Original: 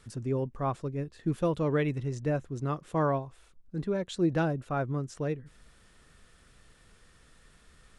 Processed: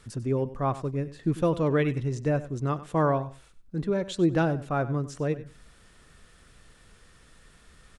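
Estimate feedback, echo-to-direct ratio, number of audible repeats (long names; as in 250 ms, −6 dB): 17%, −15.5 dB, 2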